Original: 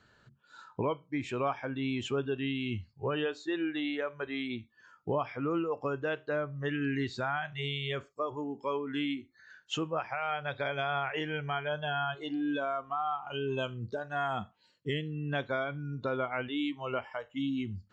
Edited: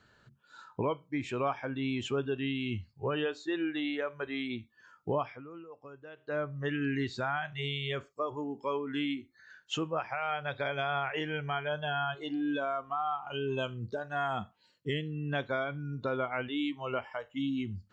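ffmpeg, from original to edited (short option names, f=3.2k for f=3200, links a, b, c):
-filter_complex "[0:a]asplit=3[a][b][c];[a]atrim=end=5.44,asetpts=PTS-STARTPTS,afade=t=out:st=5.2:d=0.24:silence=0.158489[d];[b]atrim=start=5.44:end=6.16,asetpts=PTS-STARTPTS,volume=-16dB[e];[c]atrim=start=6.16,asetpts=PTS-STARTPTS,afade=t=in:d=0.24:silence=0.158489[f];[d][e][f]concat=n=3:v=0:a=1"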